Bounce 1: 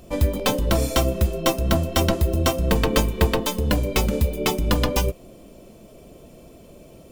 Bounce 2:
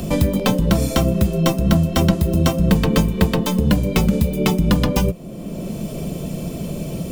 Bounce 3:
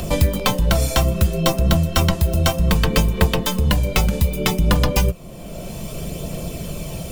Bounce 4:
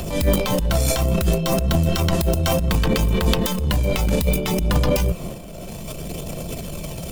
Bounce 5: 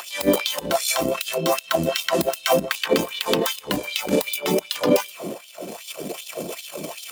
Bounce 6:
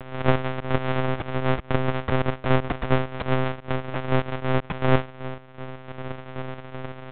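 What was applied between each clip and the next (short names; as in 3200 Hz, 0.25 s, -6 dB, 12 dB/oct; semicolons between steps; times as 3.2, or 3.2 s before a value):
bell 170 Hz +14 dB 0.81 oct; three-band squash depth 70%
bell 230 Hz -11.5 dB 1.8 oct; phaser 0.63 Hz, delay 1.5 ms, feedback 25%; gain +3 dB
transient shaper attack -9 dB, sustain +11 dB; gain -2.5 dB
LFO high-pass sine 2.6 Hz 260–3600 Hz
sample sorter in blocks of 128 samples; monotone LPC vocoder at 8 kHz 130 Hz; Bessel low-pass 2400 Hz, order 2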